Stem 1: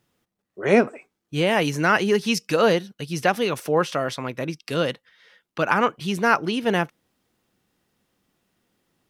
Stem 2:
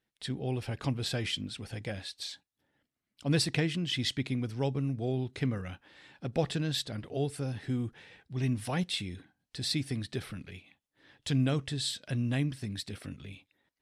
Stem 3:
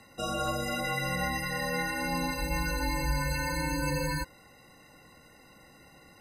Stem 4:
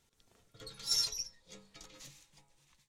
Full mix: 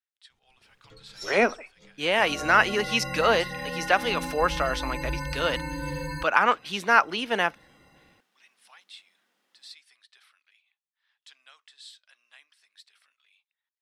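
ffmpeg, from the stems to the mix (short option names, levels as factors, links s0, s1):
-filter_complex "[0:a]highpass=f=250:w=0.5412,highpass=f=250:w=1.3066,equalizer=f=340:t=o:w=1.5:g=-11.5,adelay=650,volume=1.33[s0];[1:a]highpass=f=1100:w=0.5412,highpass=f=1100:w=1.3066,equalizer=f=1800:t=o:w=1.2:g=-4,volume=0.355[s1];[2:a]dynaudnorm=f=140:g=5:m=1.78,adelay=2000,volume=0.447[s2];[3:a]bass=f=250:g=3,treble=f=4000:g=-4,adelay=300,volume=0.841[s3];[s0][s1][s2][s3]amix=inputs=4:normalize=0,highshelf=f=6500:g=-10"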